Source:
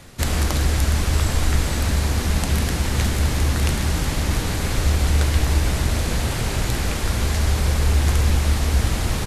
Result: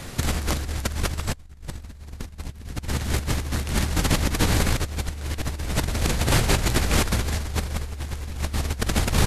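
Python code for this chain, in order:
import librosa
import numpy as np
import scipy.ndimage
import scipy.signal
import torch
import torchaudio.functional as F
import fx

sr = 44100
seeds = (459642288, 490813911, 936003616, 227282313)

y = fx.low_shelf(x, sr, hz=130.0, db=9.5, at=(1.32, 2.88))
y = fx.over_compress(y, sr, threshold_db=-24.0, ratio=-0.5)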